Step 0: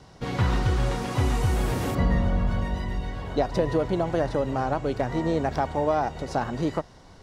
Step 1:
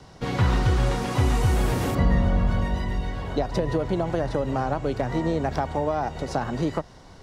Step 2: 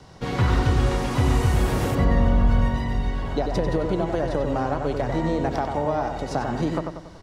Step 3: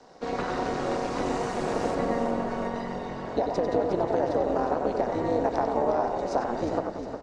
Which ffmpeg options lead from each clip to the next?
-filter_complex "[0:a]acrossover=split=160[a][b];[b]acompressor=threshold=-24dB:ratio=6[c];[a][c]amix=inputs=2:normalize=0,volume=2.5dB"
-filter_complex "[0:a]asplit=2[a][b];[b]adelay=94,lowpass=f=3.5k:p=1,volume=-5dB,asplit=2[c][d];[d]adelay=94,lowpass=f=3.5k:p=1,volume=0.47,asplit=2[e][f];[f]adelay=94,lowpass=f=3.5k:p=1,volume=0.47,asplit=2[g][h];[h]adelay=94,lowpass=f=3.5k:p=1,volume=0.47,asplit=2[i][j];[j]adelay=94,lowpass=f=3.5k:p=1,volume=0.47,asplit=2[k][l];[l]adelay=94,lowpass=f=3.5k:p=1,volume=0.47[m];[a][c][e][g][i][k][m]amix=inputs=7:normalize=0"
-filter_complex "[0:a]highpass=f=210:w=0.5412,highpass=f=210:w=1.3066,equalizer=f=480:t=q:w=4:g=6,equalizer=f=700:t=q:w=4:g=6,equalizer=f=2.1k:t=q:w=4:g=-3,equalizer=f=3.2k:t=q:w=4:g=-7,lowpass=f=7.8k:w=0.5412,lowpass=f=7.8k:w=1.3066,tremolo=f=220:d=0.824,asplit=6[a][b][c][d][e][f];[b]adelay=359,afreqshift=-45,volume=-8.5dB[g];[c]adelay=718,afreqshift=-90,volume=-14.9dB[h];[d]adelay=1077,afreqshift=-135,volume=-21.3dB[i];[e]adelay=1436,afreqshift=-180,volume=-27.6dB[j];[f]adelay=1795,afreqshift=-225,volume=-34dB[k];[a][g][h][i][j][k]amix=inputs=6:normalize=0,volume=-1dB"

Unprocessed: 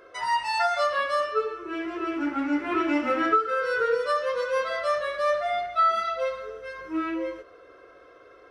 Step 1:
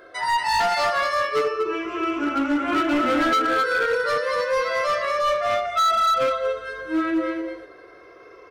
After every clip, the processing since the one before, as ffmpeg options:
-af "afftfilt=real='re*pow(10,7/40*sin(2*PI*(0.8*log(max(b,1)*sr/1024/100)/log(2)-(0.28)*(pts-256)/sr)))':imag='im*pow(10,7/40*sin(2*PI*(0.8*log(max(b,1)*sr/1024/100)/log(2)-(0.28)*(pts-256)/sr)))':win_size=1024:overlap=0.75,aecho=1:1:233:0.596,volume=21dB,asoftclip=hard,volume=-21dB,volume=4dB"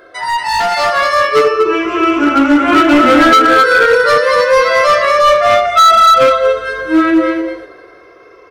-af "dynaudnorm=f=120:g=17:m=7.5dB,volume=5.5dB"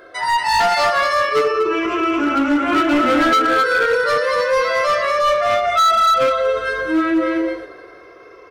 -af "alimiter=limit=-10dB:level=0:latency=1:release=42,volume=-1.5dB"

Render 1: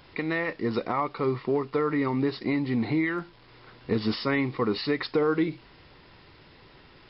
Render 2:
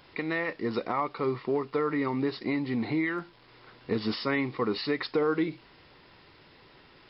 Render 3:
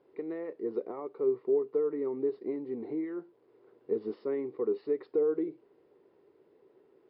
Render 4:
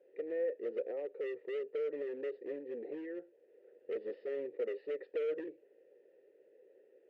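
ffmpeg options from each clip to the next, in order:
-af "lowshelf=f=130:g=-7.5,volume=-1.5dB"
-af "bandpass=f=410:t=q:w=4.6:csg=0,volume=3dB"
-filter_complex "[0:a]asoftclip=type=hard:threshold=-33.5dB,asplit=3[a][b][c];[a]bandpass=f=530:t=q:w=8,volume=0dB[d];[b]bandpass=f=1.84k:t=q:w=8,volume=-6dB[e];[c]bandpass=f=2.48k:t=q:w=8,volume=-9dB[f];[d][e][f]amix=inputs=3:normalize=0,volume=9dB"

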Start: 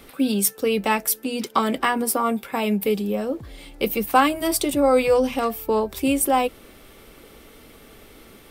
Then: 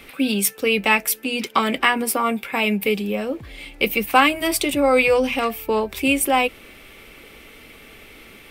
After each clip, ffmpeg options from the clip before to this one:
-af "equalizer=f=2.4k:t=o:w=0.86:g=11.5"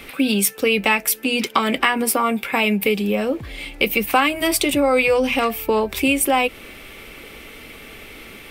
-af "acompressor=threshold=-21dB:ratio=2.5,volume=5dB"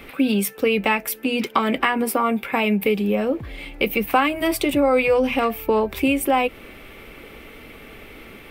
-af "equalizer=f=7.2k:t=o:w=2.5:g=-10"

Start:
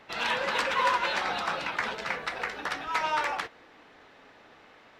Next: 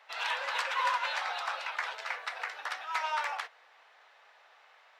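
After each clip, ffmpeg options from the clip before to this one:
-af "highpass=f=640:w=0.5412,highpass=f=640:w=1.3066,volume=-4dB"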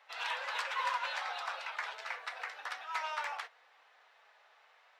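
-af "flanger=delay=3.7:depth=1.2:regen=-65:speed=0.79:shape=triangular"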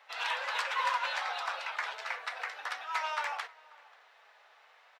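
-filter_complex "[0:a]asplit=2[a][b];[b]adelay=536.4,volume=-23dB,highshelf=f=4k:g=-12.1[c];[a][c]amix=inputs=2:normalize=0,volume=3.5dB"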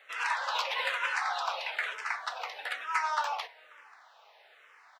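-filter_complex "[0:a]asplit=2[a][b];[b]afreqshift=-1.1[c];[a][c]amix=inputs=2:normalize=1,volume=5.5dB"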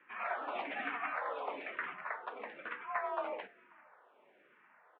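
-af "highpass=f=420:t=q:w=0.5412,highpass=f=420:t=q:w=1.307,lowpass=f=2.9k:t=q:w=0.5176,lowpass=f=2.9k:t=q:w=0.7071,lowpass=f=2.9k:t=q:w=1.932,afreqshift=-260,volume=-6.5dB"

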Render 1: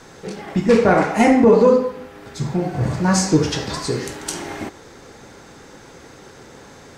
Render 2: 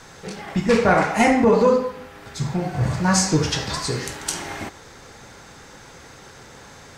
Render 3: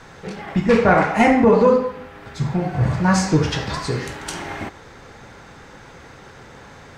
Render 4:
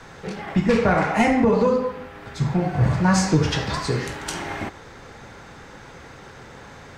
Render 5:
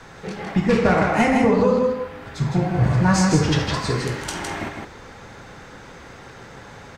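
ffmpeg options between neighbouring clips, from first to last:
-af "equalizer=f=330:t=o:w=1.7:g=-7.5,volume=1.5dB"
-af "bass=f=250:g=1,treble=f=4k:g=-10,volume=2dB"
-filter_complex "[0:a]acrossover=split=170|3000[a][b][c];[b]acompressor=threshold=-16dB:ratio=6[d];[a][d][c]amix=inputs=3:normalize=0"
-af "aecho=1:1:159:0.596"

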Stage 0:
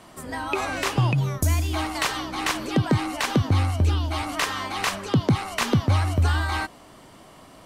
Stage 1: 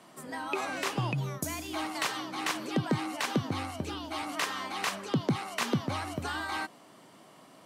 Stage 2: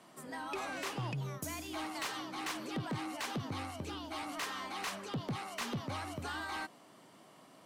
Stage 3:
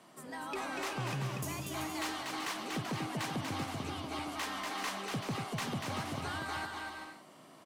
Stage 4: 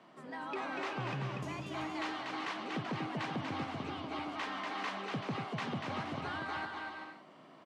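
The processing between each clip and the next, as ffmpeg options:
-af "highpass=f=140:w=0.5412,highpass=f=140:w=1.3066,volume=-6.5dB"
-af "asoftclip=type=tanh:threshold=-28.5dB,volume=-4dB"
-af "aecho=1:1:240|384|470.4|522.2|553.3:0.631|0.398|0.251|0.158|0.1"
-af "highpass=120,lowpass=3.3k"

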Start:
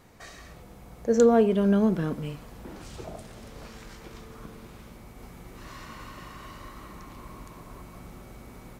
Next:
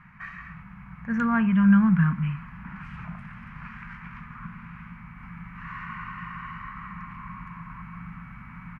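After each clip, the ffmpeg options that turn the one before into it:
-af "firequalizer=gain_entry='entry(100,0);entry(170,12);entry(360,-28);entry(580,-21);entry(1000,7);entry(1600,11);entry(2500,6);entry(3600,-17);entry(7600,-27);entry(11000,-24)':delay=0.05:min_phase=1"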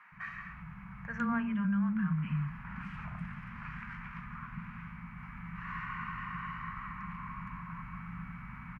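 -filter_complex "[0:a]acompressor=threshold=-26dB:ratio=6,acrossover=split=370[a][b];[a]adelay=120[c];[c][b]amix=inputs=2:normalize=0,volume=-2.5dB"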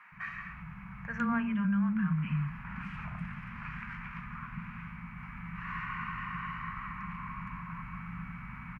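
-af "equalizer=f=2.5k:t=o:w=0.42:g=3.5,volume=1.5dB"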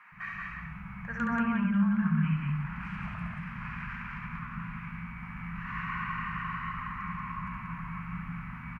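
-af "aecho=1:1:69.97|183.7:0.562|0.794"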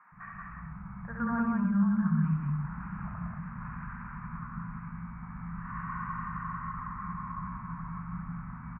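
-af "lowpass=f=1.4k:w=0.5412,lowpass=f=1.4k:w=1.3066"

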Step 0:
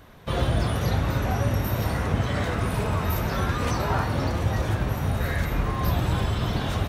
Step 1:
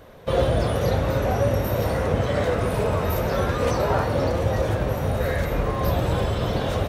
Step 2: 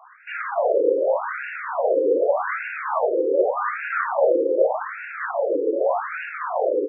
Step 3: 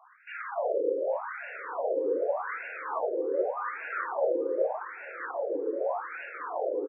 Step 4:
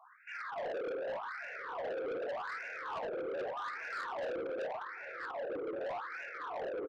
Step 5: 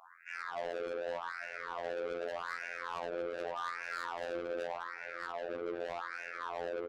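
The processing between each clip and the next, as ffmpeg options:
-af "equalizer=f=520:t=o:w=0.71:g=11.5"
-af "afftfilt=real='re*between(b*sr/1024,370*pow(2000/370,0.5+0.5*sin(2*PI*0.84*pts/sr))/1.41,370*pow(2000/370,0.5+0.5*sin(2*PI*0.84*pts/sr))*1.41)':imag='im*between(b*sr/1024,370*pow(2000/370,0.5+0.5*sin(2*PI*0.84*pts/sr))/1.41,370*pow(2000/370,0.5+0.5*sin(2*PI*0.84*pts/sr))*1.41)':win_size=1024:overlap=0.75,volume=8.5dB"
-filter_complex "[0:a]asplit=2[a][b];[b]adelay=846,lowpass=f=1.4k:p=1,volume=-20.5dB,asplit=2[c][d];[d]adelay=846,lowpass=f=1.4k:p=1,volume=0.33,asplit=2[e][f];[f]adelay=846,lowpass=f=1.4k:p=1,volume=0.33[g];[a][c][e][g]amix=inputs=4:normalize=0,volume=-9dB"
-af "asoftclip=type=tanh:threshold=-33dB,volume=-2.5dB"
-af "asoftclip=type=tanh:threshold=-37.5dB,afftfilt=real='hypot(re,im)*cos(PI*b)':imag='0':win_size=2048:overlap=0.75,volume=5.5dB"

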